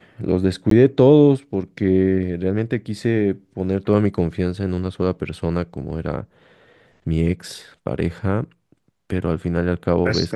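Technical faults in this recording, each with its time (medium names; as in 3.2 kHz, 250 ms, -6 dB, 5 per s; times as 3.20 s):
0.70–0.71 s: dropout 13 ms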